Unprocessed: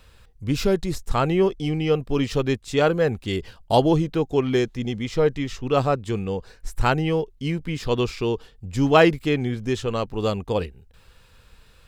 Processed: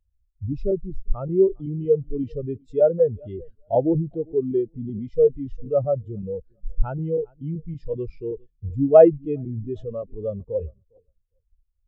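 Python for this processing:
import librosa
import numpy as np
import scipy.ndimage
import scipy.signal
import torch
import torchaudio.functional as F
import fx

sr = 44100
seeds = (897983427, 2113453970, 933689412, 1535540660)

p1 = fx.low_shelf(x, sr, hz=110.0, db=3.0)
p2 = fx.echo_feedback(p1, sr, ms=405, feedback_pct=34, wet_db=-21.5)
p3 = fx.over_compress(p2, sr, threshold_db=-31.0, ratio=-1.0)
p4 = p2 + F.gain(torch.from_numpy(p3), 1.5).numpy()
p5 = fx.peak_eq(p4, sr, hz=580.0, db=4.5, octaves=0.47)
p6 = fx.buffer_crackle(p5, sr, first_s=0.52, period_s=0.19, block=128, kind='repeat')
p7 = fx.spectral_expand(p6, sr, expansion=2.5)
y = F.gain(torch.from_numpy(p7), -1.0).numpy()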